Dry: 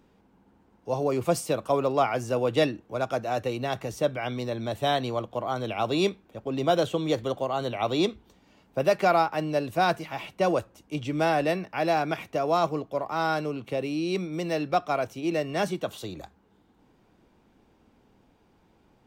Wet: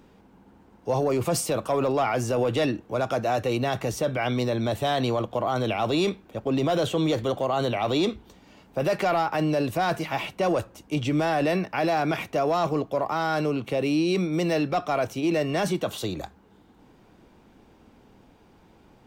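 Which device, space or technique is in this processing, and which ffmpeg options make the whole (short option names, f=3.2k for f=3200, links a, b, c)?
soft clipper into limiter: -af "asoftclip=type=tanh:threshold=-15.5dB,alimiter=limit=-24dB:level=0:latency=1:release=17,volume=7dB"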